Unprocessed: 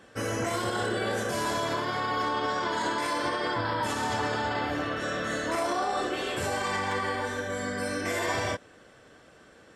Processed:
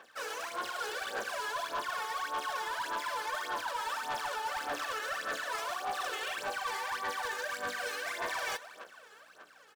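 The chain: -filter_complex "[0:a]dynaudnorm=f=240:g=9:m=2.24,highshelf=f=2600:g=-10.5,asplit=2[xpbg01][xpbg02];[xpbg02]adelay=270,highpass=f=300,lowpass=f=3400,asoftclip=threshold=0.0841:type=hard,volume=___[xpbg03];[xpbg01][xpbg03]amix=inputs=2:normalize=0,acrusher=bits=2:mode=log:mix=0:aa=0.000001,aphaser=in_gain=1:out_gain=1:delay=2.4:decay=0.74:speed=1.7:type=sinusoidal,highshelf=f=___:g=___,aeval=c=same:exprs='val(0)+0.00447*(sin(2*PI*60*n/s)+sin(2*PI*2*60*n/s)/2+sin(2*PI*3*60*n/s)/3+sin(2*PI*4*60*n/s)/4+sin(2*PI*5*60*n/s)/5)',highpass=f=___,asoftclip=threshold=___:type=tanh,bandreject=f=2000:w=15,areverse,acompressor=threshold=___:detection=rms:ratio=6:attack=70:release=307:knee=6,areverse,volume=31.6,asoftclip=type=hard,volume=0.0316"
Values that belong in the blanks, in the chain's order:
0.0501, 10000, -12, 1000, 0.178, 0.0178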